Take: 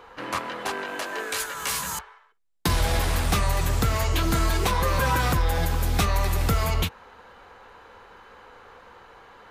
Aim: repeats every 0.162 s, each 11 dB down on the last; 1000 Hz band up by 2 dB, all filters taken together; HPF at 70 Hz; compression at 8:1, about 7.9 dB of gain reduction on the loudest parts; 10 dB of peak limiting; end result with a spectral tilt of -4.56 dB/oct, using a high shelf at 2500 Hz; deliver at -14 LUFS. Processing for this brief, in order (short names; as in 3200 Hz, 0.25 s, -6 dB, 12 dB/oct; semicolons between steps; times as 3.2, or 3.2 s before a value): HPF 70 Hz; bell 1000 Hz +3 dB; high shelf 2500 Hz -3.5 dB; compressor 8:1, threshold -27 dBFS; limiter -25.5 dBFS; feedback echo 0.162 s, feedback 28%, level -11 dB; gain +20.5 dB